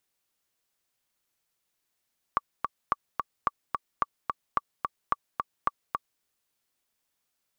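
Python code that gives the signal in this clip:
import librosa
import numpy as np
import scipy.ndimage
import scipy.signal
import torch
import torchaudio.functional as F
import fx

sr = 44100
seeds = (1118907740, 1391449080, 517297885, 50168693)

y = fx.click_track(sr, bpm=218, beats=2, bars=7, hz=1150.0, accent_db=4.0, level_db=-10.5)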